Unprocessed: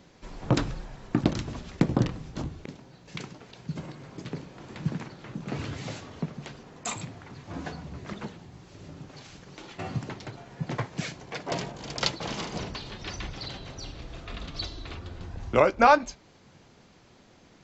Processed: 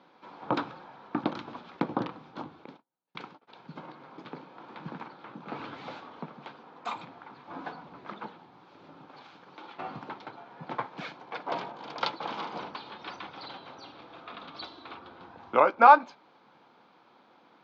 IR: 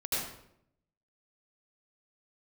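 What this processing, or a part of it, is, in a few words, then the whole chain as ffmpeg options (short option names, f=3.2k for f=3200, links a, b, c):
phone earpiece: -filter_complex "[0:a]highpass=f=88:p=1,asplit=3[a][b][c];[a]afade=t=out:st=2.64:d=0.02[d];[b]agate=range=-36dB:threshold=-44dB:ratio=16:detection=peak,afade=t=in:st=2.64:d=0.02,afade=t=out:st=3.47:d=0.02[e];[c]afade=t=in:st=3.47:d=0.02[f];[d][e][f]amix=inputs=3:normalize=0,highpass=350,equalizer=f=400:t=q:w=4:g=-6,equalizer=f=620:t=q:w=4:g=-5,equalizer=f=890:t=q:w=4:g=5,equalizer=f=1.3k:t=q:w=4:g=3,equalizer=f=1.9k:t=q:w=4:g=-9,equalizer=f=2.8k:t=q:w=4:g=-7,lowpass=f=3.4k:w=0.5412,lowpass=f=3.4k:w=1.3066,volume=1.5dB"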